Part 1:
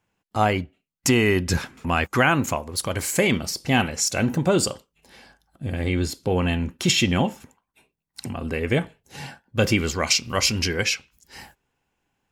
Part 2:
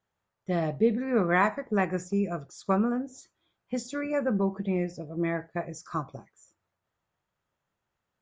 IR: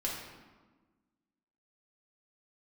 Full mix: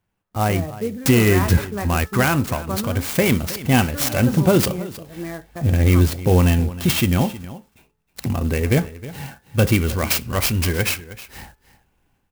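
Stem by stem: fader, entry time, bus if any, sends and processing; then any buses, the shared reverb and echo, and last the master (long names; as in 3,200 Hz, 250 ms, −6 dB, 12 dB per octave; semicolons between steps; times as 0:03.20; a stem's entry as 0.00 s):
−5.0 dB, 0.00 s, no send, echo send −16.5 dB, hum removal 432.8 Hz, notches 4; automatic gain control gain up to 11.5 dB
−2.0 dB, 0.00 s, no send, no echo send, low-shelf EQ 170 Hz −7.5 dB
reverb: not used
echo: single-tap delay 315 ms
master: low-shelf EQ 120 Hz +12 dB; converter with an unsteady clock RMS 0.042 ms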